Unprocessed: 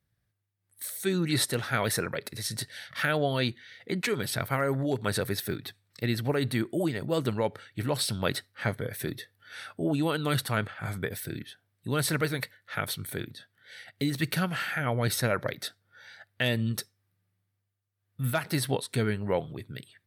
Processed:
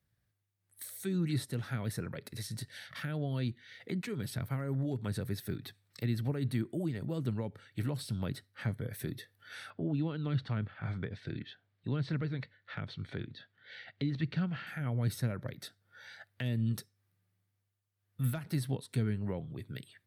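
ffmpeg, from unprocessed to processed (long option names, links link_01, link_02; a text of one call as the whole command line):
ffmpeg -i in.wav -filter_complex "[0:a]asettb=1/sr,asplit=3[link_01][link_02][link_03];[link_01]atrim=end=9.704[link_04];[link_02]atrim=start=9.7:end=14.67,asetpts=PTS-STARTPTS,afade=type=in:duration=0.004:curve=qsin,afade=type=out:start_time=4.966:duration=0.004:curve=qsin,lowpass=frequency=4400:width=0.5412,lowpass=frequency=4400:width=1.3066[link_05];[link_03]atrim=start=14.666[link_06];[link_04][link_05]acrossfade=duration=0.004:curve1=hsin:curve2=qsin[link_07];[link_07][link_06]acrossfade=duration=0.004:curve1=qsin:curve2=hsin,acrossover=split=270[link_08][link_09];[link_09]acompressor=threshold=-42dB:ratio=5[link_10];[link_08][link_10]amix=inputs=2:normalize=0,volume=-1.5dB" out.wav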